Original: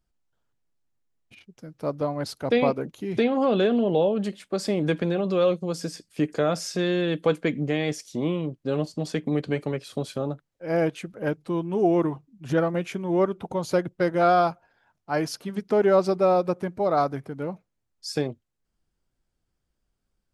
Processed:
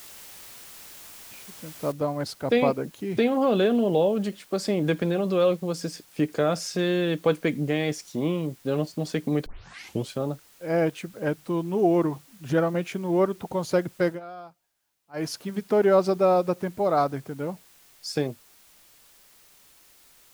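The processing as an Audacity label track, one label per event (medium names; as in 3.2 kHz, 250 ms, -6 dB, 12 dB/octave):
1.920000	1.920000	noise floor step -45 dB -56 dB
9.460000	9.460000	tape start 0.64 s
14.080000	15.250000	dip -21.5 dB, fades 0.12 s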